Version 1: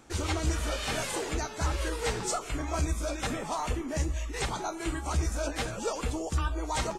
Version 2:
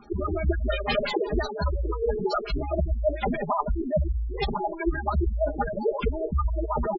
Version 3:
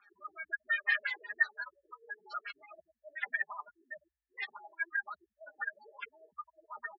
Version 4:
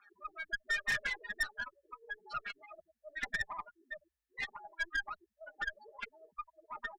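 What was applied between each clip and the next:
LFO low-pass sine 5.7 Hz 310–4800 Hz; comb 4.9 ms, depth 67%; spectral gate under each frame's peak -10 dB strong; gain +5 dB
ladder band-pass 1800 Hz, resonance 90%; gain +2.5 dB
tube stage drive 31 dB, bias 0.5; gain +3 dB

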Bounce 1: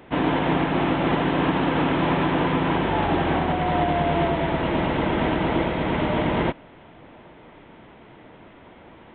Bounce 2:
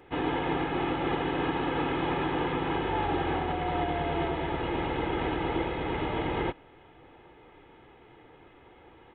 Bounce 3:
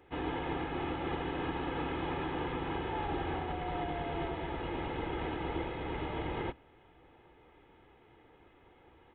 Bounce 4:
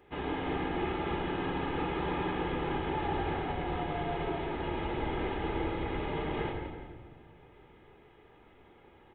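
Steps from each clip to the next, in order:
comb 2.4 ms, depth 56%; gain -8 dB
octaver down 2 oct, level -5 dB; gain -7 dB
feedback echo 0.172 s, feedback 37%, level -9 dB; shoebox room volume 1400 m³, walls mixed, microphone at 1.3 m

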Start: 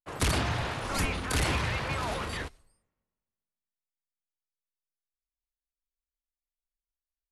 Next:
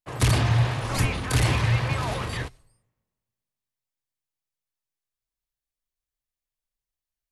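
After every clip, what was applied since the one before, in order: bell 120 Hz +14.5 dB 0.33 oct; notch 1400 Hz, Q 15; gain +3 dB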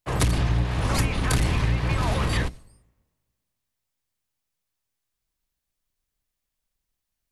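octaver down 1 oct, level +2 dB; compressor 10:1, threshold -26 dBFS, peak gain reduction 14.5 dB; gain +7 dB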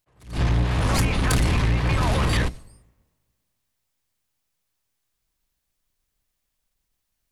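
soft clip -19.5 dBFS, distortion -15 dB; attack slew limiter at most 160 dB/s; gain +5 dB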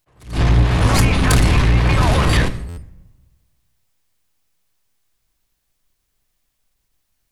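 reverb RT60 0.75 s, pre-delay 3 ms, DRR 11 dB; stuck buffer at 2.68, samples 512, times 7; gain +6 dB

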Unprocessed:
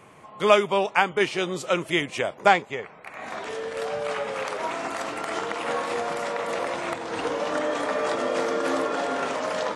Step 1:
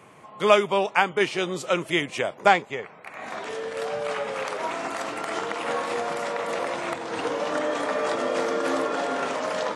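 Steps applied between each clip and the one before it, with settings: HPF 86 Hz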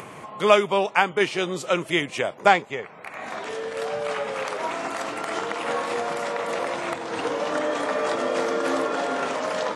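upward compressor, threshold -32 dBFS; gain +1 dB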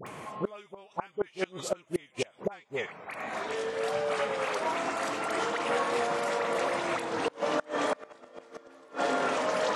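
dispersion highs, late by 67 ms, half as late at 1200 Hz; flipped gate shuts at -15 dBFS, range -28 dB; gain -2 dB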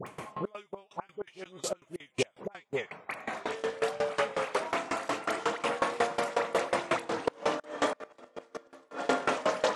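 dB-ramp tremolo decaying 5.5 Hz, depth 22 dB; gain +6 dB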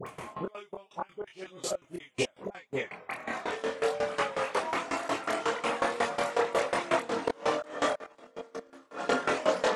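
chorus voices 4, 0.37 Hz, delay 24 ms, depth 2.3 ms; gain +4 dB

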